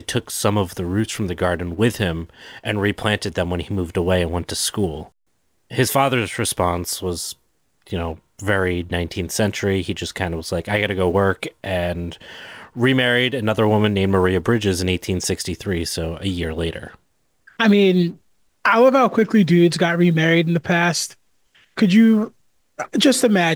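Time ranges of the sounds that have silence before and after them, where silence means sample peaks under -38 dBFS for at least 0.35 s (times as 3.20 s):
5.71–7.32 s
7.87–16.95 s
17.48–18.14 s
18.65–21.13 s
21.77–22.28 s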